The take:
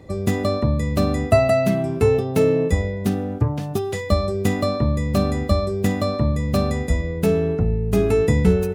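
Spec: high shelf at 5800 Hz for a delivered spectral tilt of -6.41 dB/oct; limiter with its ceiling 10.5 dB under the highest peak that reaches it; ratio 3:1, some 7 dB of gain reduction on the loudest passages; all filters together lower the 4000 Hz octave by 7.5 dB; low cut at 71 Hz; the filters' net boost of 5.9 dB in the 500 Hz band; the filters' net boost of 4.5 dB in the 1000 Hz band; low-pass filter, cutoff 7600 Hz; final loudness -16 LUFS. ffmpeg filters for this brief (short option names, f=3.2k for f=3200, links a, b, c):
-af "highpass=71,lowpass=7.6k,equalizer=f=500:t=o:g=6.5,equalizer=f=1k:t=o:g=4,equalizer=f=4k:t=o:g=-7,highshelf=f=5.8k:g=-4,acompressor=threshold=-17dB:ratio=3,volume=8dB,alimiter=limit=-8dB:level=0:latency=1"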